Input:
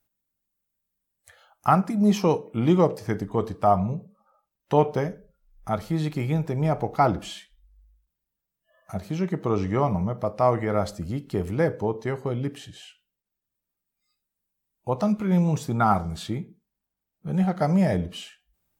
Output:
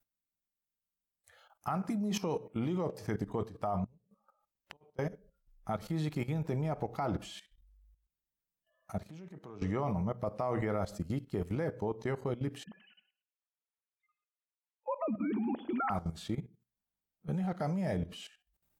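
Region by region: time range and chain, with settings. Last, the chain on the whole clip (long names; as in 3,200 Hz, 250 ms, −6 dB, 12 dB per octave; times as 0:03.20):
0:03.84–0:04.99: compressor whose output falls as the input rises −22 dBFS, ratio −0.5 + gate with flip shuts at −27 dBFS, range −30 dB
0:08.99–0:09.62: high-pass filter 86 Hz 24 dB per octave + downward compressor 2 to 1, threshold −41 dBFS + highs frequency-modulated by the lows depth 0.12 ms
0:12.64–0:15.90: three sine waves on the formant tracks + hum removal 193.2 Hz, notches 33 + repeating echo 102 ms, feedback 25%, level −13 dB
whole clip: mains-hum notches 60/120 Hz; brickwall limiter −15.5 dBFS; output level in coarse steps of 15 dB; level −2.5 dB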